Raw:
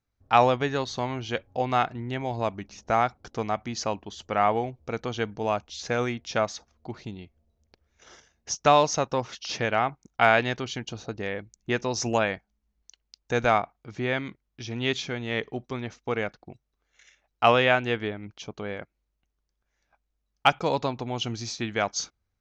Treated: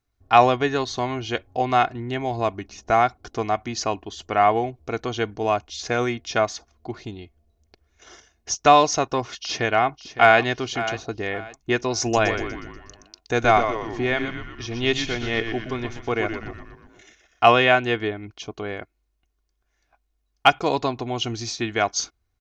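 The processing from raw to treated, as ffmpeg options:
-filter_complex "[0:a]asplit=2[s0][s1];[s1]afade=t=in:st=9.38:d=0.01,afade=t=out:st=10.42:d=0.01,aecho=0:1:560|1120|1680:0.223872|0.0671616|0.0201485[s2];[s0][s2]amix=inputs=2:normalize=0,asettb=1/sr,asplit=3[s3][s4][s5];[s3]atrim=end=12.014[s6];[s4]atrim=start=12.01:end=17.46,asetpts=PTS-STARTPTS,afade=t=in:d=0.004:c=qsin,afade=t=out:st=5.446:d=0.004:c=qsin,asplit=8[s7][s8][s9][s10][s11][s12][s13][s14];[s8]adelay=121,afreqshift=-120,volume=0.422[s15];[s9]adelay=242,afreqshift=-240,volume=0.24[s16];[s10]adelay=363,afreqshift=-360,volume=0.136[s17];[s11]adelay=484,afreqshift=-480,volume=0.0785[s18];[s12]adelay=605,afreqshift=-600,volume=0.0447[s19];[s13]adelay=726,afreqshift=-720,volume=0.0254[s20];[s14]adelay=847,afreqshift=-840,volume=0.0145[s21];[s7][s15][s16][s17][s18][s19][s20][s21]amix=inputs=8:normalize=0,atrim=end_sample=240345[s22];[s5]atrim=start=17.456[s23];[s6][s22]acrossfade=d=0.004:c1=hsin:c2=qsin[s24];[s24][s23]acrossfade=d=0.004:c1=qsin:c2=hsin,aecho=1:1:2.8:0.47,volume=1.5"

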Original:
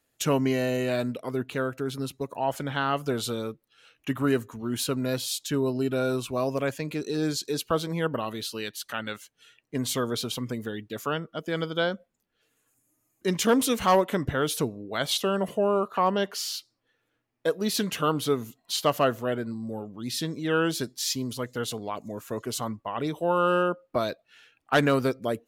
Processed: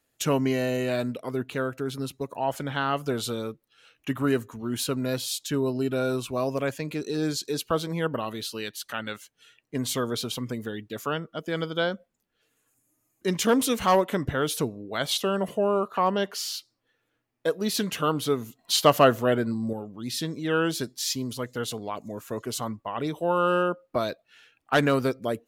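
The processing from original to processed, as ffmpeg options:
-filter_complex "[0:a]asplit=3[s0][s1][s2];[s0]atrim=end=18.592[s3];[s1]atrim=start=18.588:end=19.732,asetpts=PTS-STARTPTS,volume=1.88[s4];[s2]atrim=start=19.728[s5];[s3][s4]acrossfade=d=0.004:c1=hsin:c2=hsin[s6];[s6][s5]acrossfade=d=0.004:c1=hsin:c2=hsin"

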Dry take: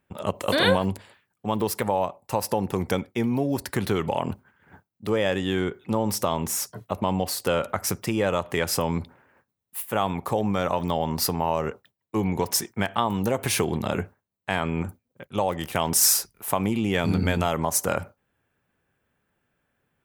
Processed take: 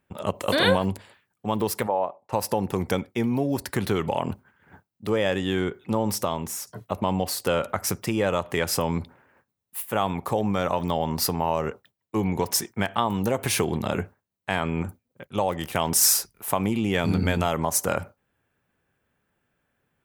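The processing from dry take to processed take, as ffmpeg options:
-filter_complex "[0:a]asplit=3[s0][s1][s2];[s0]afade=t=out:st=1.86:d=0.02[s3];[s1]bandpass=f=670:t=q:w=0.72,afade=t=in:st=1.86:d=0.02,afade=t=out:st=2.32:d=0.02[s4];[s2]afade=t=in:st=2.32:d=0.02[s5];[s3][s4][s5]amix=inputs=3:normalize=0,asplit=2[s6][s7];[s6]atrim=end=6.67,asetpts=PTS-STARTPTS,afade=t=out:st=6.09:d=0.58:silence=0.421697[s8];[s7]atrim=start=6.67,asetpts=PTS-STARTPTS,afade=t=in:d=0.004:c=hsin:silence=0.421697[s9];[s8][s9]concat=n=2:v=0:a=1"

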